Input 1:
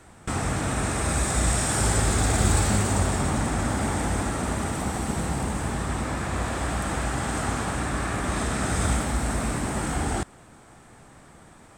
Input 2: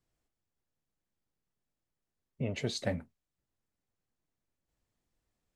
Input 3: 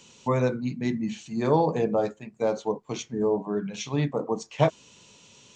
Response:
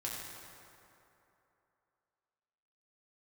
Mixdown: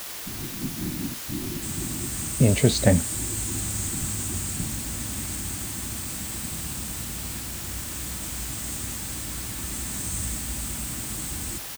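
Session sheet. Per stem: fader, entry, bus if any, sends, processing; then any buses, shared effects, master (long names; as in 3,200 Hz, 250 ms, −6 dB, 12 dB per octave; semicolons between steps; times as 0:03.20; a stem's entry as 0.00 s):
−15.5 dB, 1.35 s, bus A, send −15 dB, tilt shelving filter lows −9 dB, about 1,500 Hz
+2.5 dB, 0.00 s, no bus, no send, no processing
−9.0 dB, 0.00 s, bus A, no send, downward compressor 4 to 1, threshold −34 dBFS, peak gain reduction 16 dB; random phases in short frames
bus A: 0.0 dB, linear-phase brick-wall band-stop 380–6,000 Hz; brickwall limiter −32 dBFS, peak gain reduction 9 dB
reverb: on, RT60 3.0 s, pre-delay 4 ms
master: low-shelf EQ 380 Hz +7.5 dB; automatic gain control gain up to 8.5 dB; bit-depth reduction 6 bits, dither triangular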